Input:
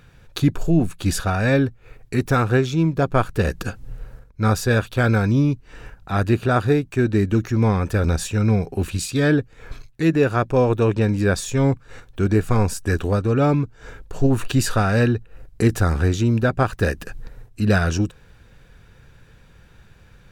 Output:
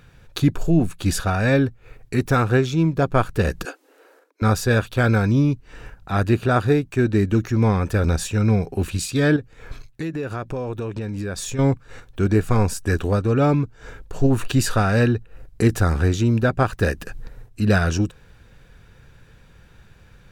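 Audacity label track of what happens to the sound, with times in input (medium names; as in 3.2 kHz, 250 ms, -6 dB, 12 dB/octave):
3.650000	4.420000	steep high-pass 280 Hz 96 dB/octave
9.360000	11.590000	compression, threshold -24 dBFS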